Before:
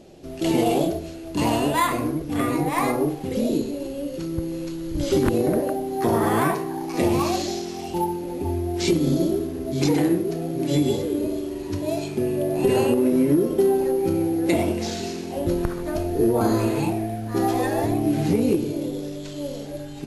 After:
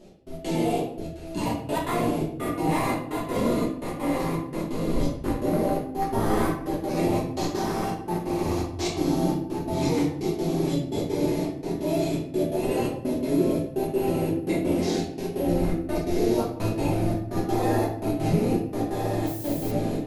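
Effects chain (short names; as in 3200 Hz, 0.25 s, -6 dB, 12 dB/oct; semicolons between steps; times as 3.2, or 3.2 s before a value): limiter -16 dBFS, peak gain reduction 9.5 dB; on a send: diffused feedback echo 1.373 s, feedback 43%, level -3.5 dB; on the sum: step gate "x..x.xxx" 169 bpm -60 dB; shoebox room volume 100 m³, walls mixed, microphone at 1.4 m; 19.26–19.7 added noise violet -32 dBFS; gain -7 dB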